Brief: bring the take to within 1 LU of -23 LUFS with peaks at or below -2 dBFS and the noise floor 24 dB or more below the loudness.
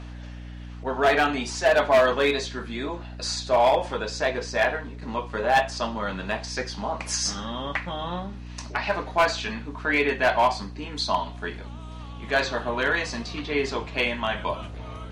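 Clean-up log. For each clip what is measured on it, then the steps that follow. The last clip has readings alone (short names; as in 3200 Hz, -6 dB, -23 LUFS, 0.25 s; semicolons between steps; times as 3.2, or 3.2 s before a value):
clipped 0.5%; flat tops at -13.5 dBFS; hum 60 Hz; harmonics up to 300 Hz; hum level -36 dBFS; loudness -25.5 LUFS; peak -13.5 dBFS; loudness target -23.0 LUFS
-> clip repair -13.5 dBFS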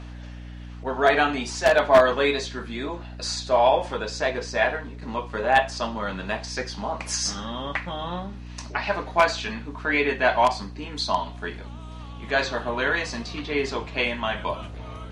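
clipped 0.0%; hum 60 Hz; harmonics up to 300 Hz; hum level -36 dBFS
-> de-hum 60 Hz, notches 5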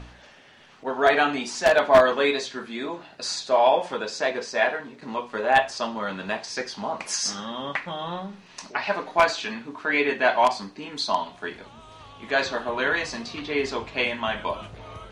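hum none; loudness -24.5 LUFS; peak -4.0 dBFS; loudness target -23.0 LUFS
-> gain +1.5 dB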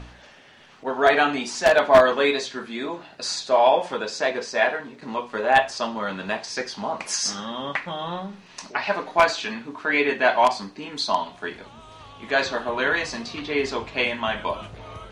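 loudness -23.0 LUFS; peak -2.5 dBFS; noise floor -49 dBFS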